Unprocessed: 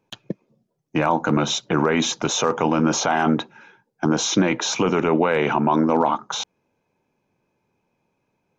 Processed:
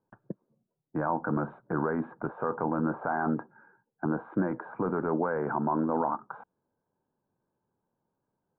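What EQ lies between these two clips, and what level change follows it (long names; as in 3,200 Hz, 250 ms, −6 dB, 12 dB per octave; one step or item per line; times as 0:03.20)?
Chebyshev low-pass filter 1,600 Hz, order 5
−9.0 dB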